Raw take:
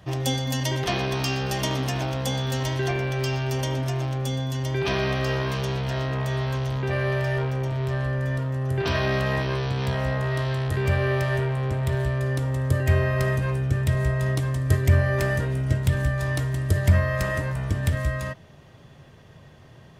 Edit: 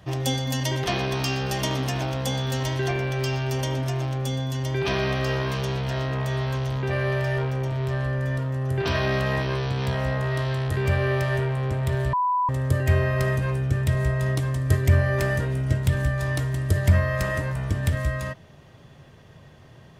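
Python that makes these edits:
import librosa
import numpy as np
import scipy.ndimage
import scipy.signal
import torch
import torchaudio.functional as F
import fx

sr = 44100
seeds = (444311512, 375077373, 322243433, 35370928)

y = fx.edit(x, sr, fx.bleep(start_s=12.13, length_s=0.36, hz=993.0, db=-19.5), tone=tone)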